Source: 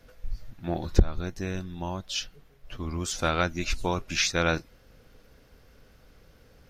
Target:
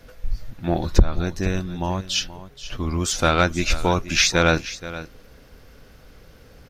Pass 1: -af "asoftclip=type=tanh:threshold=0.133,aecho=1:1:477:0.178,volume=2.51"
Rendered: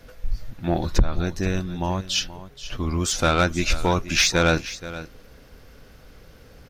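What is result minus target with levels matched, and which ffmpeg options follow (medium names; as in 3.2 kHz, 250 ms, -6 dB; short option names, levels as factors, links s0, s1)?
saturation: distortion +6 dB
-af "asoftclip=type=tanh:threshold=0.282,aecho=1:1:477:0.178,volume=2.51"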